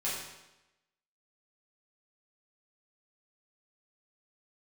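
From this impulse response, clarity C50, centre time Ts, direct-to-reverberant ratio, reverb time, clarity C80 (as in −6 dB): 1.5 dB, 63 ms, −9.0 dB, 0.95 s, 4.0 dB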